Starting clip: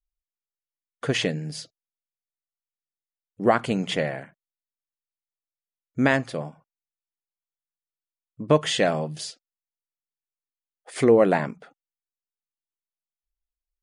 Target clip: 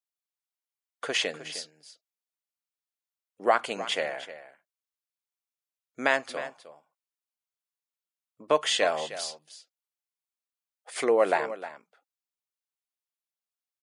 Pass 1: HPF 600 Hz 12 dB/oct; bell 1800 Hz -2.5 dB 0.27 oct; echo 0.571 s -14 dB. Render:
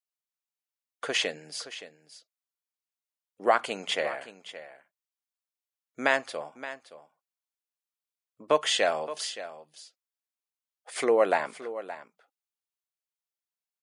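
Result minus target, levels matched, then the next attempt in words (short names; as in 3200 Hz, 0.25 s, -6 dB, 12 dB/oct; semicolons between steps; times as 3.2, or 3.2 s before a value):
echo 0.262 s late
HPF 600 Hz 12 dB/oct; bell 1800 Hz -2.5 dB 0.27 oct; echo 0.309 s -14 dB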